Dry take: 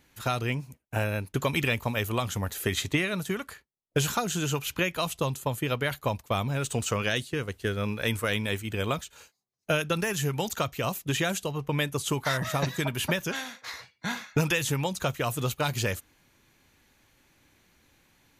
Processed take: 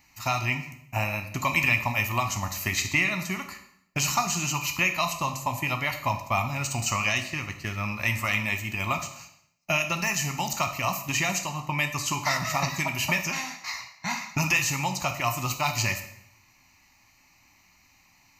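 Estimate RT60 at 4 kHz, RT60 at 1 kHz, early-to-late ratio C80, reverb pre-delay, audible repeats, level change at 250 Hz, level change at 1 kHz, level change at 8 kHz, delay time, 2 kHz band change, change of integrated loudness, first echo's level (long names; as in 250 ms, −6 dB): 0.65 s, 0.70 s, 12.5 dB, 8 ms, no echo audible, −2.5 dB, +5.0 dB, +5.5 dB, no echo audible, +5.0 dB, +2.5 dB, no echo audible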